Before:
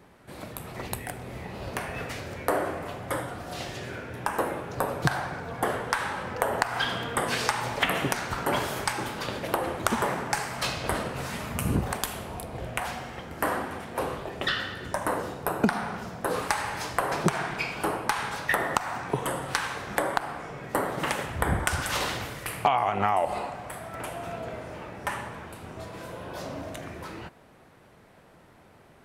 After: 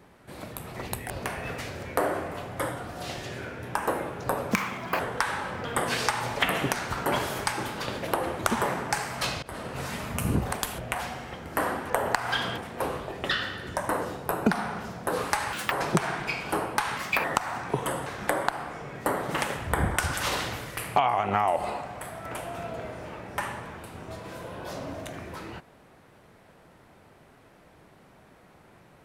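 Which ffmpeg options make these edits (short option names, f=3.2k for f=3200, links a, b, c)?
-filter_complex "[0:a]asplit=14[a][b][c][d][e][f][g][h][i][j][k][l][m][n];[a]atrim=end=1.102[o];[b]atrim=start=1.608:end=5.034[p];[c]atrim=start=5.03:end=5.72,asetpts=PTS-STARTPTS,asetrate=63945,aresample=44100[q];[d]atrim=start=5.716:end=6.372[r];[e]atrim=start=7.048:end=10.83,asetpts=PTS-STARTPTS,afade=t=out:st=3.778:d=0.004:c=hsin:silence=0.0794328[s];[f]atrim=start=10.83:end=12.192,asetpts=PTS-STARTPTS,afade=t=in:d=0.39:silence=0.0794328[t];[g]atrim=start=12.638:end=13.752[u];[h]atrim=start=6.368:end=7.052[v];[i]atrim=start=13.748:end=16.704[w];[j]atrim=start=16.7:end=17.03,asetpts=PTS-STARTPTS,asetrate=75852,aresample=44100,atrim=end_sample=8461,asetpts=PTS-STARTPTS[x];[k]atrim=start=17.026:end=18.284[y];[l]atrim=start=18.28:end=18.64,asetpts=PTS-STARTPTS,asetrate=57771,aresample=44100,atrim=end_sample=12119,asetpts=PTS-STARTPTS[z];[m]atrim=start=18.636:end=19.462[aa];[n]atrim=start=19.748[ab];[o][p]acrossfade=d=0.004:c1=hsin:c2=hsin[ac];[ac][q]acrossfade=d=0.004:c1=hsin:c2=hsin[ad];[ad][r]acrossfade=d=0.004:c1=hsin:c2=hsin[ae];[s][t]concat=n=2:v=0:a=1[af];[ae][af]acrossfade=d=0.004:c1=hsin:c2=hsin[ag];[ag][u]acrossfade=d=0.004:c1=hsin:c2=hsin[ah];[ah][v]acrossfade=d=0.004:c1=hsin:c2=hsin[ai];[ai][w]acrossfade=d=0.004:c1=hsin:c2=hsin[aj];[aj][x]acrossfade=d=0.004:c1=hsin:c2=hsin[ak];[ak][y]acrossfade=d=0.004:c1=hsin:c2=hsin[al];[al][z]acrossfade=d=0.004:c1=hsin:c2=hsin[am];[am][aa]acrossfade=d=0.004:c1=hsin:c2=hsin[an];[an][ab]acrossfade=d=0.004:c1=hsin:c2=hsin"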